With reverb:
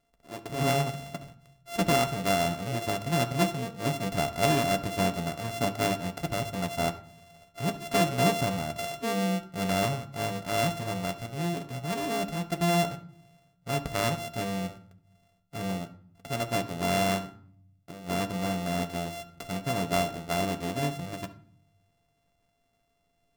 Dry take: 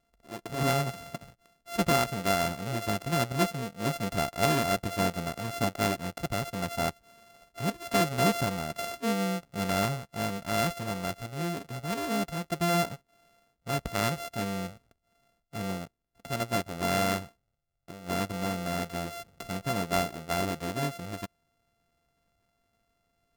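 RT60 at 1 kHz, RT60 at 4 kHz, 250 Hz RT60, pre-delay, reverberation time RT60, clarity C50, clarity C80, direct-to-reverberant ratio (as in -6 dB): 0.55 s, 0.40 s, 1.0 s, 7 ms, 0.55 s, 14.0 dB, 18.5 dB, 7.0 dB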